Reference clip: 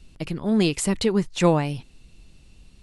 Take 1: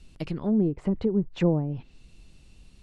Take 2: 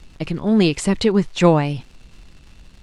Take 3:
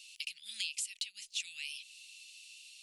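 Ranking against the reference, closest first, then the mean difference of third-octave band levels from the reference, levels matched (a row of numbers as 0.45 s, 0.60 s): 2, 1, 3; 1.0 dB, 7.5 dB, 20.5 dB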